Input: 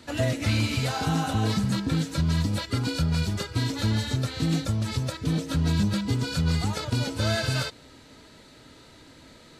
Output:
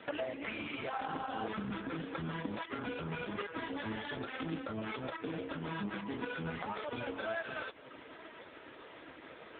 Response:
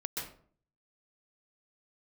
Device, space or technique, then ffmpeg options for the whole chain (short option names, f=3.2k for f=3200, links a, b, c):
voicemail: -filter_complex "[0:a]asplit=3[a][b][c];[a]afade=t=out:st=4.87:d=0.02[d];[b]highpass=f=130:p=1,afade=t=in:st=4.87:d=0.02,afade=t=out:st=6.18:d=0.02[e];[c]afade=t=in:st=6.18:d=0.02[f];[d][e][f]amix=inputs=3:normalize=0,highpass=390,lowpass=2.8k,acompressor=threshold=-41dB:ratio=8,volume=8.5dB" -ar 8000 -c:a libopencore_amrnb -b:a 4750